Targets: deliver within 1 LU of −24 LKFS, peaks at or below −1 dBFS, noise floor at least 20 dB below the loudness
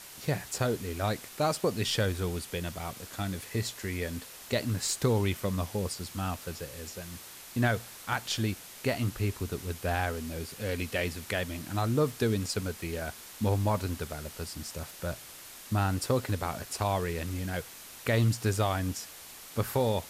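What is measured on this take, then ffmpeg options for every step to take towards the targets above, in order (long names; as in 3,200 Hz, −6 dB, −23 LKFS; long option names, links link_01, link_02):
background noise floor −48 dBFS; target noise floor −52 dBFS; integrated loudness −32.0 LKFS; sample peak −15.0 dBFS; target loudness −24.0 LKFS
→ -af "afftdn=noise_reduction=6:noise_floor=-48"
-af "volume=8dB"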